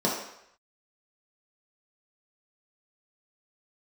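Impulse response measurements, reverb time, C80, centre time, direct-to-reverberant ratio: 0.75 s, 6.5 dB, 46 ms, −5.0 dB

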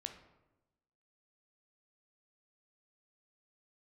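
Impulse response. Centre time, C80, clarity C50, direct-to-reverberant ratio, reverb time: 16 ms, 12.0 dB, 9.0 dB, 5.5 dB, 1.0 s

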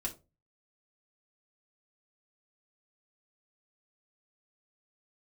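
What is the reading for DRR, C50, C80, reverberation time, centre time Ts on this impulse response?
−2.0 dB, 14.5 dB, 21.0 dB, 0.30 s, 12 ms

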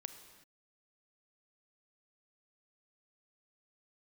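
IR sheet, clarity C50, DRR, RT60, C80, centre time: 9.0 dB, 8.5 dB, non-exponential decay, 10.5 dB, 18 ms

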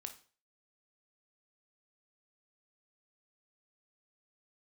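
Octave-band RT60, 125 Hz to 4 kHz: 0.40, 0.40, 0.45, 0.40, 0.40, 0.40 seconds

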